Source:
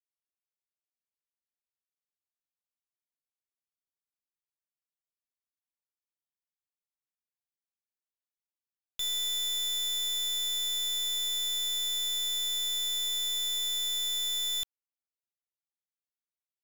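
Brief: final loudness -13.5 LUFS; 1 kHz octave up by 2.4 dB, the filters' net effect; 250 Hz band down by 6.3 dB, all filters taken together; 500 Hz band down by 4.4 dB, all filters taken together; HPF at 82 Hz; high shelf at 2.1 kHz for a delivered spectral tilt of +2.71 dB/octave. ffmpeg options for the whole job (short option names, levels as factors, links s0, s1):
-af "highpass=82,equalizer=f=250:t=o:g=-9,equalizer=f=500:t=o:g=-4,equalizer=f=1000:t=o:g=5.5,highshelf=f=2100:g=-5.5,volume=8.91"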